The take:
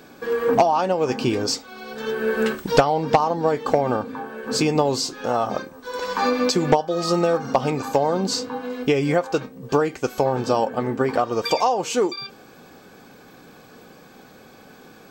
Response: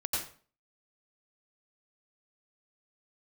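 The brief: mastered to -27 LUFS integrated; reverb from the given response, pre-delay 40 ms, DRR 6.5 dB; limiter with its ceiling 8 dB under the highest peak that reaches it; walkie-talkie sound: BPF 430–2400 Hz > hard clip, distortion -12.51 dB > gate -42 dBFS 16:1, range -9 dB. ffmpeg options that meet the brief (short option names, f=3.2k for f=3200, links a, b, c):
-filter_complex "[0:a]alimiter=limit=-14dB:level=0:latency=1,asplit=2[a][b];[1:a]atrim=start_sample=2205,adelay=40[c];[b][c]afir=irnorm=-1:irlink=0,volume=-11.5dB[d];[a][d]amix=inputs=2:normalize=0,highpass=430,lowpass=2.4k,asoftclip=type=hard:threshold=-21.5dB,agate=range=-9dB:threshold=-42dB:ratio=16,volume=1.5dB"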